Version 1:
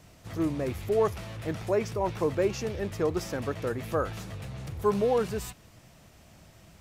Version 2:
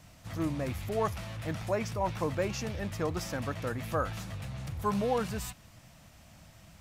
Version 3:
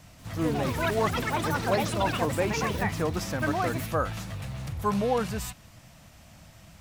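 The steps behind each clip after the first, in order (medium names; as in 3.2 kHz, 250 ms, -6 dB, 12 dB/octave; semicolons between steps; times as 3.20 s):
peaking EQ 400 Hz -11 dB 0.56 oct
ever faster or slower copies 188 ms, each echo +7 st, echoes 3; trim +3.5 dB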